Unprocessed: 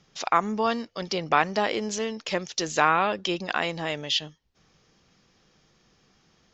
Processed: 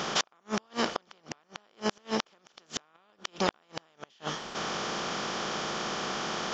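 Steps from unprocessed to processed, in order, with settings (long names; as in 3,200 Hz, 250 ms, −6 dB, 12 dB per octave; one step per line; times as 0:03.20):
compressor on every frequency bin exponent 0.4
downward compressor 16 to 1, threshold −19 dBFS, peak gain reduction 9.5 dB
gate with flip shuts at −13 dBFS, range −39 dB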